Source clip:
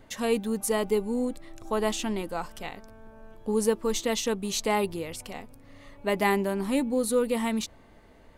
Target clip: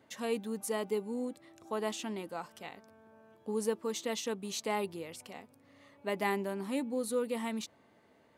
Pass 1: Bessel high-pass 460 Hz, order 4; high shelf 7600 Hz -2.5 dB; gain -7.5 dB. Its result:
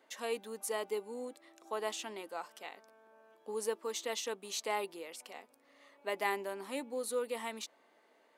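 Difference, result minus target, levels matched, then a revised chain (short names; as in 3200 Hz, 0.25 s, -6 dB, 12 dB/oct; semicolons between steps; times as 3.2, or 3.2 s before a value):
125 Hz band -12.5 dB
Bessel high-pass 150 Hz, order 4; high shelf 7600 Hz -2.5 dB; gain -7.5 dB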